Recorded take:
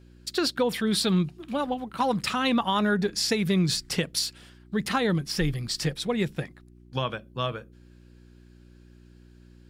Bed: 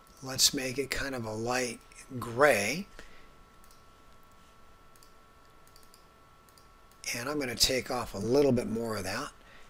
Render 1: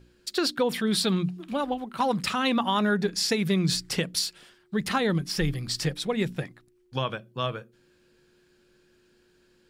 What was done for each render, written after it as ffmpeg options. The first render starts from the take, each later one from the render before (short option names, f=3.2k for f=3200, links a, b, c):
-af "bandreject=f=60:t=h:w=4,bandreject=f=120:t=h:w=4,bandreject=f=180:t=h:w=4,bandreject=f=240:t=h:w=4,bandreject=f=300:t=h:w=4"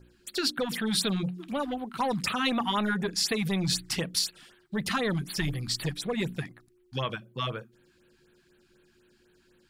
-filter_complex "[0:a]acrossover=split=1300[a][b];[a]asoftclip=type=tanh:threshold=-24.5dB[c];[c][b]amix=inputs=2:normalize=0,afftfilt=real='re*(1-between(b*sr/1024,440*pow(6700/440,0.5+0.5*sin(2*PI*4*pts/sr))/1.41,440*pow(6700/440,0.5+0.5*sin(2*PI*4*pts/sr))*1.41))':imag='im*(1-between(b*sr/1024,440*pow(6700/440,0.5+0.5*sin(2*PI*4*pts/sr))/1.41,440*pow(6700/440,0.5+0.5*sin(2*PI*4*pts/sr))*1.41))':win_size=1024:overlap=0.75"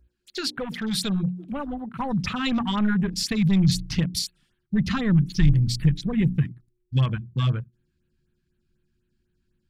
-af "afwtdn=0.01,asubboost=boost=9.5:cutoff=170"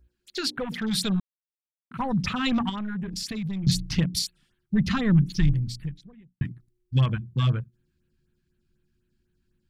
-filter_complex "[0:a]asettb=1/sr,asplit=3[a][b][c];[a]atrim=end=2.694[d];[b]atrim=start=2.69:end=3.67,asetpts=PTS-STARTPTS,afade=t=in:d=0.004:c=qsin,afade=t=out:st=0.976:d=0.004:c=qsin,acompressor=threshold=-29dB:ratio=5:attack=3.2:release=140:knee=1:detection=peak[e];[c]atrim=start=3.666[f];[d][e]acrossfade=d=0.004:c1=hsin:c2=qsin[g];[g][f]acrossfade=d=0.004:c1=qsin:c2=hsin,asplit=4[h][i][j][k];[h]atrim=end=1.2,asetpts=PTS-STARTPTS,afade=t=out:st=1.196:d=0.004:c=hsin[l];[i]atrim=start=1.2:end=1.91,asetpts=PTS-STARTPTS,volume=0[m];[j]atrim=start=1.91:end=6.41,asetpts=PTS-STARTPTS,afade=t=in:d=0.004:c=hsin,afade=t=out:st=3.35:d=1.15:c=qua[n];[k]atrim=start=6.41,asetpts=PTS-STARTPTS,afade=t=in:d=0.004:c=hsin[o];[l][m][n][o]concat=n=4:v=0:a=1"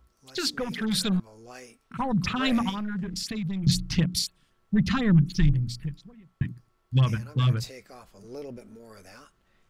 -filter_complex "[1:a]volume=-14.5dB[a];[0:a][a]amix=inputs=2:normalize=0"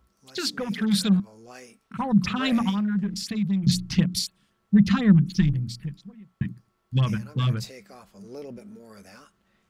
-af "highpass=f=78:p=1,equalizer=f=200:w=7.2:g=11"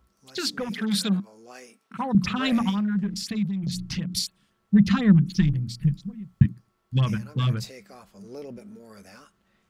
-filter_complex "[0:a]asettb=1/sr,asplit=3[a][b][c];[a]atrim=end=0.694[d];[b]atrim=start=0.69:end=2.15,asetpts=PTS-STARTPTS,afade=t=in:d=0.004:c=qsin,afade=t=out:st=1.456:d=0.004:c=qsin,highpass=210[e];[c]atrim=start=2.146[f];[d][e]acrossfade=d=0.004:c1=hsin:c2=qsin[g];[g][f]acrossfade=d=0.004:c1=qsin:c2=hsin,asettb=1/sr,asplit=3[h][i][j];[h]atrim=end=3.444[k];[i]atrim=start=3.44:end=4.13,asetpts=PTS-STARTPTS,afade=t=in:d=0.004:c=qsin,afade=t=out:st=0.686:d=0.004:c=qsin,acompressor=threshold=-26dB:ratio=4:attack=3.2:release=140:knee=1:detection=peak[l];[j]atrim=start=4.126[m];[k][l]acrossfade=d=0.004:c1=hsin:c2=qsin[n];[n][m]acrossfade=d=0.004:c1=qsin:c2=hsin,asettb=1/sr,asplit=3[o][p][q];[o]atrim=end=5.814[r];[p]atrim=start=5.81:end=6.46,asetpts=PTS-STARTPTS,afade=t=in:d=0.004:c=qsin,afade=t=out:st=0.646:d=0.004:c=qsin,bass=f=250:g=13,treble=f=4k:g=5[s];[q]atrim=start=6.456[t];[r][s]acrossfade=d=0.004:c1=hsin:c2=qsin[u];[u][t]acrossfade=d=0.004:c1=qsin:c2=hsin"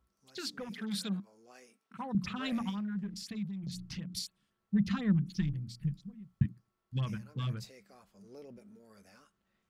-af "volume=-11.5dB"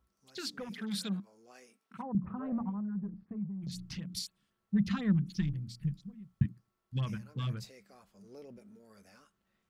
-filter_complex "[0:a]asplit=3[a][b][c];[a]afade=t=out:st=2.01:d=0.02[d];[b]lowpass=f=1.1k:w=0.5412,lowpass=f=1.1k:w=1.3066,afade=t=in:st=2.01:d=0.02,afade=t=out:st=3.6:d=0.02[e];[c]afade=t=in:st=3.6:d=0.02[f];[d][e][f]amix=inputs=3:normalize=0"